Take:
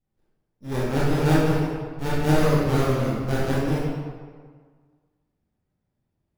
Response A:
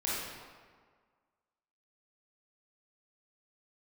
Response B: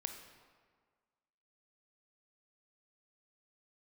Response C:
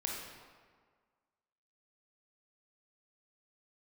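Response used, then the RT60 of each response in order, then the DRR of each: A; 1.7, 1.7, 1.7 seconds; −7.5, 5.5, −1.5 decibels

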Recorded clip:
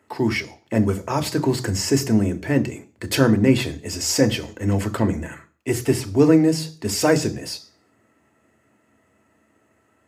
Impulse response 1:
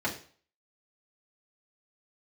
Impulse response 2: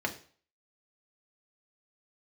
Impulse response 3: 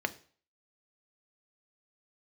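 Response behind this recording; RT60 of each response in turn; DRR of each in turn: 3; 0.45, 0.45, 0.45 seconds; −5.0, 1.5, 8.5 decibels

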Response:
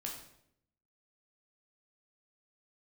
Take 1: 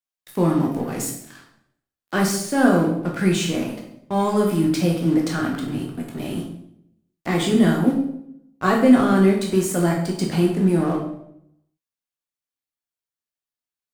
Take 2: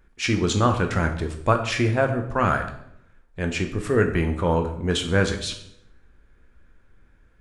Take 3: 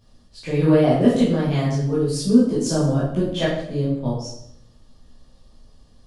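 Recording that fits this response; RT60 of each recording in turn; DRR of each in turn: 1; 0.75, 0.75, 0.75 seconds; −1.0, 5.0, −9.0 decibels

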